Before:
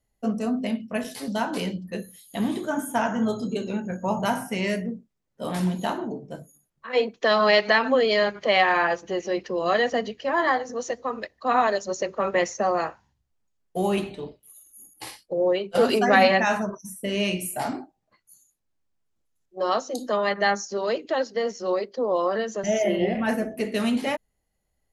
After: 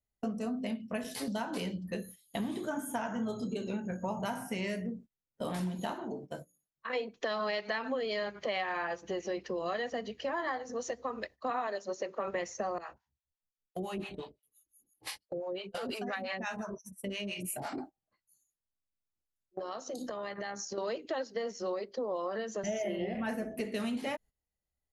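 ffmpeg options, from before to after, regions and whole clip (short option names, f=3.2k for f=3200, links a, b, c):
-filter_complex "[0:a]asettb=1/sr,asplit=3[a][b][c];[a]atrim=end=5.944[d];[b]atrim=start=5.94:end=6.9,asetpts=PTS-STARTPTS,afade=t=in:d=0.004:c=qsin,afade=t=out:st=0.956:d=0.004:c=qsin,lowshelf=f=360:g=-7,bandreject=f=60:t=h:w=6,bandreject=f=120:t=h:w=6,bandreject=f=180:t=h:w=6,bandreject=f=240:t=h:w=6,bandreject=f=300:t=h:w=6,bandreject=f=360:t=h:w=6,bandreject=f=420:t=h:w=6,bandreject=f=480:t=h:w=6,bandreject=f=540:t=h:w=6,bandreject=f=600:t=h:w=6[e];[c]atrim=start=6.896[f];[d][e]acrossfade=d=0.004:c1=hsin:c2=qsin[g];[g][f]acrossfade=d=0.004:c1=qsin:c2=hsin,asettb=1/sr,asplit=3[h][i][j];[h]atrim=end=11.504[k];[i]atrim=start=11.5:end=12.28,asetpts=PTS-STARTPTS,afade=t=in:d=0.004:c=qsin,afade=t=out:st=0.776:d=0.004:c=qsin,highpass=230,highshelf=f=5.5k:g=-6,acrossover=split=5500[l][m];[m]acompressor=threshold=-48dB:ratio=4:attack=1:release=60[n];[l][n]amix=inputs=2:normalize=0[o];[j]atrim=start=12.276[p];[k][o]acrossfade=d=0.004:c1=hsin:c2=qsin[q];[q][p]acrossfade=d=0.004:c1=qsin:c2=hsin,asettb=1/sr,asplit=3[r][s][t];[r]atrim=end=12.784[u];[s]atrim=start=12.78:end=17.78,asetpts=PTS-STARTPTS,afade=t=in:d=0.004:c=qsin,afade=t=out:st=4.996:d=0.004:c=qsin,equalizer=f=2.9k:w=0.46:g=4,acompressor=threshold=-27dB:ratio=4:attack=3.2:release=140:knee=1:detection=peak,acrossover=split=600[v][w];[v]aeval=exprs='val(0)*(1-1/2+1/2*cos(2*PI*5.8*n/s))':c=same[x];[w]aeval=exprs='val(0)*(1-1/2-1/2*cos(2*PI*5.8*n/s))':c=same[y];[x][y]amix=inputs=2:normalize=0[z];[t]atrim=start=17.776[aa];[u][z]acrossfade=d=0.004:c1=hsin:c2=qsin[ab];[ab][aa]acrossfade=d=0.004:c1=qsin:c2=hsin,asettb=1/sr,asplit=3[ac][ad][ae];[ac]atrim=end=19.594[af];[ad]atrim=start=19.59:end=20.78,asetpts=PTS-STARTPTS,afade=t=in:d=0.004:c=qsin,afade=t=out:st=1.186:d=0.004:c=qsin,acompressor=threshold=-33dB:ratio=10:attack=3.2:release=140:knee=1:detection=peak,tremolo=f=73:d=0.333[ag];[ae]atrim=start=20.776[ah];[af][ag]acrossfade=d=0.004:c1=hsin:c2=qsin[ai];[ai][ah]acrossfade=d=0.004:c1=qsin:c2=hsin,equalizer=f=66:w=1.7:g=5,agate=range=-16dB:threshold=-43dB:ratio=16:detection=peak,acompressor=threshold=-34dB:ratio=4"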